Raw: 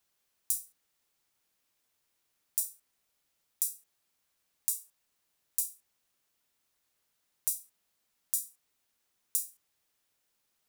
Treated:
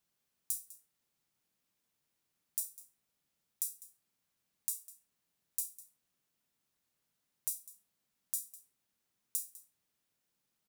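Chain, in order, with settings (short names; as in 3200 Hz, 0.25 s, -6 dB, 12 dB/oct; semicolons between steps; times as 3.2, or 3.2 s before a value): bell 170 Hz +9.5 dB 1.6 oct; on a send: echo 0.201 s -18 dB; on the sum: gain -5.5 dB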